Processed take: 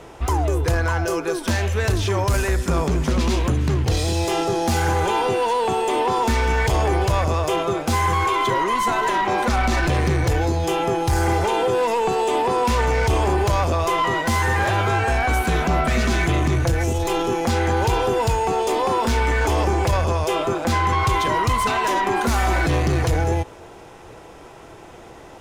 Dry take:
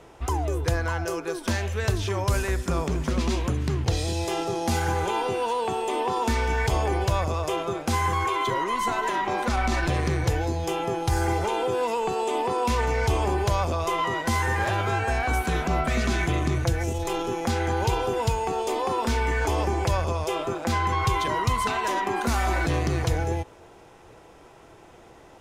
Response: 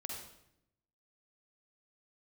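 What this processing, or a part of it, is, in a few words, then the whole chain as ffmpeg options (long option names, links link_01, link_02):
saturation between pre-emphasis and de-emphasis: -af "highshelf=frequency=2700:gain=11.5,asoftclip=type=tanh:threshold=-20.5dB,highshelf=frequency=2700:gain=-11.5,volume=8dB"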